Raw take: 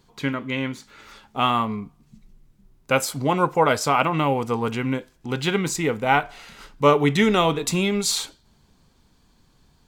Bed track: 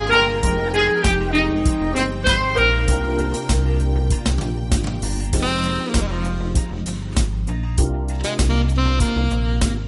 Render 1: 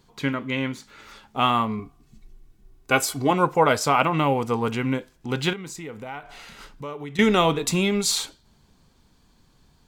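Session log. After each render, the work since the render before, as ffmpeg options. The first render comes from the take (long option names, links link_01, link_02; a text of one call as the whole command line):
ffmpeg -i in.wav -filter_complex "[0:a]asettb=1/sr,asplit=3[link_01][link_02][link_03];[link_01]atrim=end=1.794[link_04];[link_02]atrim=start=1.79:end=3.31,asetpts=PTS-STARTPTS,afade=type=in:duration=0.004:curve=qsin,afade=type=out:start_time=1.516:duration=0.004:curve=qsin,aecho=1:1:2.7:0.65,atrim=end_sample=67032[link_05];[link_03]atrim=start=3.306[link_06];[link_04][link_05]acrossfade=duration=0.004:curve1=hsin:curve2=qsin[link_07];[link_07][link_06]acrossfade=duration=0.004:curve1=qsin:curve2=hsin,asettb=1/sr,asplit=3[link_08][link_09][link_10];[link_08]atrim=end=5.534[link_11];[link_09]atrim=start=5.53:end=7.19,asetpts=PTS-STARTPTS,afade=type=in:duration=0.004:curve=qsin,afade=type=out:start_time=1.656:duration=0.004:curve=qsin,acompressor=threshold=-37dB:ratio=3:attack=3.2:release=140:knee=1:detection=peak[link_12];[link_10]atrim=start=7.186[link_13];[link_11][link_12]acrossfade=duration=0.004:curve1=hsin:curve2=qsin[link_14];[link_14][link_13]acrossfade=duration=0.004:curve1=qsin:curve2=hsin" out.wav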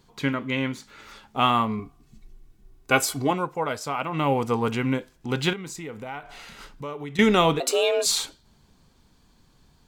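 ffmpeg -i in.wav -filter_complex "[0:a]asettb=1/sr,asplit=3[link_01][link_02][link_03];[link_01]atrim=end=7.604[link_04];[link_02]atrim=start=7.6:end=8.06,asetpts=PTS-STARTPTS,afade=type=in:duration=0.004:curve=qsin,afade=type=out:start_time=0.456:duration=0.004:curve=qsin,afreqshift=240[link_05];[link_03]atrim=start=8.056[link_06];[link_04][link_05]acrossfade=duration=0.004:curve1=hsin:curve2=qsin[link_07];[link_07][link_06]acrossfade=duration=0.004:curve1=qsin:curve2=hsin,asplit=3[link_08][link_09][link_10];[link_08]atrim=end=3.46,asetpts=PTS-STARTPTS,afade=type=out:start_time=3.18:duration=0.28:silence=0.354813[link_11];[link_09]atrim=start=3.46:end=4.06,asetpts=PTS-STARTPTS,volume=-9dB[link_12];[link_10]atrim=start=4.06,asetpts=PTS-STARTPTS,afade=type=in:duration=0.28:silence=0.354813[link_13];[link_11][link_12][link_13]concat=n=3:v=0:a=1" out.wav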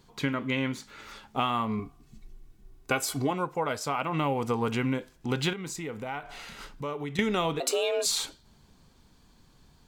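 ffmpeg -i in.wav -af "acompressor=threshold=-24dB:ratio=6" out.wav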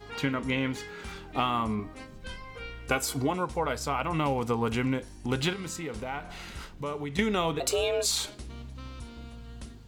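ffmpeg -i in.wav -i bed.wav -filter_complex "[1:a]volume=-25dB[link_01];[0:a][link_01]amix=inputs=2:normalize=0" out.wav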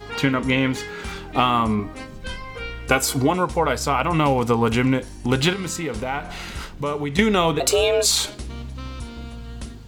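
ffmpeg -i in.wav -af "volume=9dB" out.wav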